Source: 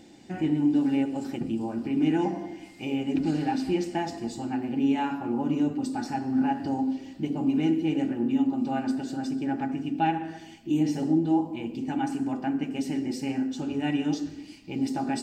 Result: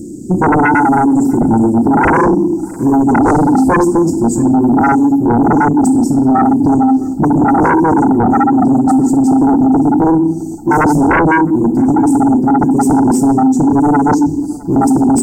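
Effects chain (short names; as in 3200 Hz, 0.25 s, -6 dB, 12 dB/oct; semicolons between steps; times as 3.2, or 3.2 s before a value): elliptic band-stop 370–7600 Hz, stop band 50 dB; in parallel at +2 dB: vocal rider within 3 dB 2 s; on the sum: sine folder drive 14 dB, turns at -6.5 dBFS; narrowing echo 0.661 s, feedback 48%, band-pass 490 Hz, level -21.5 dB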